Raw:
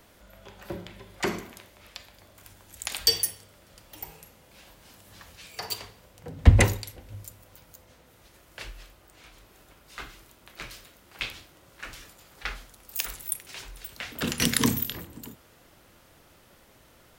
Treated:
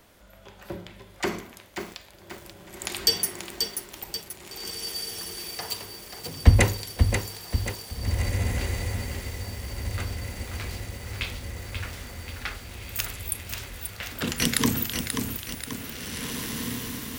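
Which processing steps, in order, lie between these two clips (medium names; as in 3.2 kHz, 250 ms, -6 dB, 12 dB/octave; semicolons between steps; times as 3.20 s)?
on a send: echo that smears into a reverb 1953 ms, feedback 59%, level -6 dB; on the sum: bit-crushed delay 535 ms, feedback 55%, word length 7-bit, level -6 dB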